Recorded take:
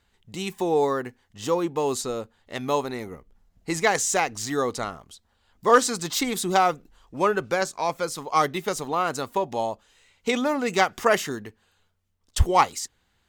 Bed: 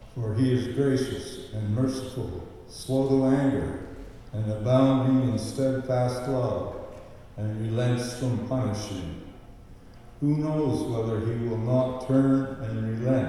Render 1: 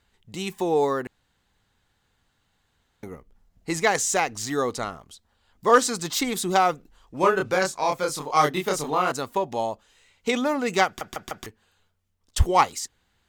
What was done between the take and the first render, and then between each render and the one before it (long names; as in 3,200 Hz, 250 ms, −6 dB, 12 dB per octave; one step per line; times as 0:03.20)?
0:01.07–0:03.03: fill with room tone
0:07.20–0:09.12: double-tracking delay 27 ms −2 dB
0:10.86: stutter in place 0.15 s, 4 plays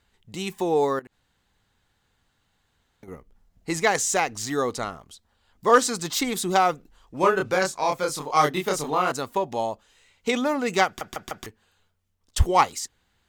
0:00.99–0:03.08: downward compressor 4 to 1, threshold −44 dBFS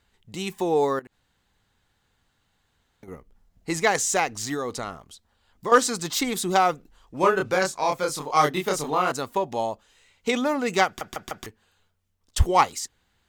0:04.54–0:05.72: downward compressor 3 to 1, threshold −26 dBFS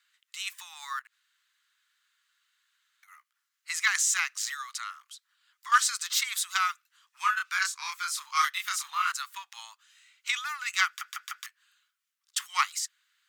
Butterworth high-pass 1,200 Hz 48 dB per octave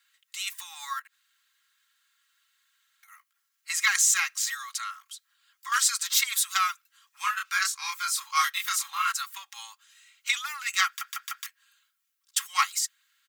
high-shelf EQ 10,000 Hz +9 dB
comb filter 3.7 ms, depth 71%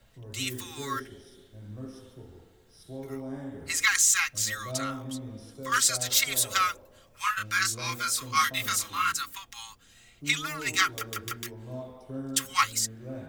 mix in bed −15.5 dB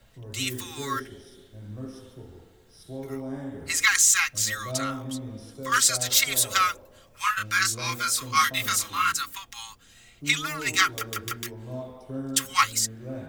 level +3 dB